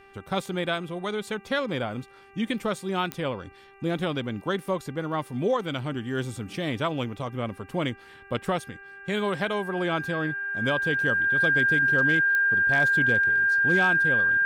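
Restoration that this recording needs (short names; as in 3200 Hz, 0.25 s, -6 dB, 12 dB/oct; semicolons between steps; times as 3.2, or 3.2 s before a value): clip repair -14 dBFS; de-click; de-hum 393.4 Hz, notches 7; notch 1600 Hz, Q 30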